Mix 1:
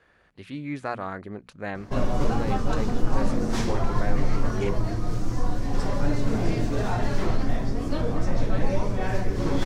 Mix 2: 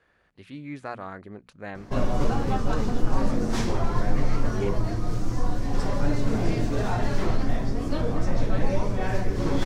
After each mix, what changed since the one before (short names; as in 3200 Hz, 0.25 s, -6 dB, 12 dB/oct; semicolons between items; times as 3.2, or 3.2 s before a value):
speech -4.5 dB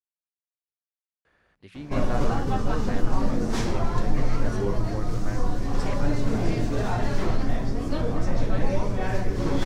speech: entry +1.25 s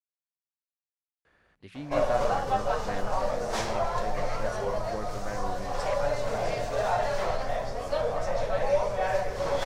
background: add resonant low shelf 420 Hz -11 dB, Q 3